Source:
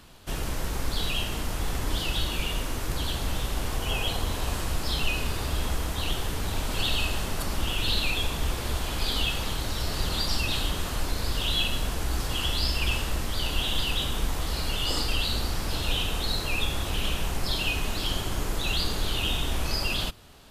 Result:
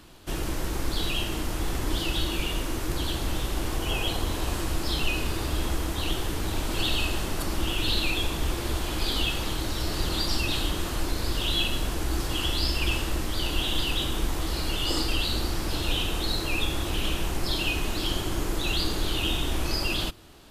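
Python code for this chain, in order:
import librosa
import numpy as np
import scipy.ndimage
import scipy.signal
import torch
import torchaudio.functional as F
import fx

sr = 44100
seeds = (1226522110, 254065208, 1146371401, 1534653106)

y = fx.peak_eq(x, sr, hz=330.0, db=10.0, octaves=0.3)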